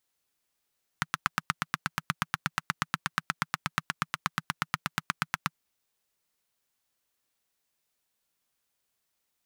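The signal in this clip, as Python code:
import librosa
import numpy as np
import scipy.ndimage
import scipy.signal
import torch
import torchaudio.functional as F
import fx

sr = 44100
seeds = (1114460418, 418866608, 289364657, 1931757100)

y = fx.engine_single(sr, seeds[0], length_s=4.53, rpm=1000, resonances_hz=(160.0, 1300.0))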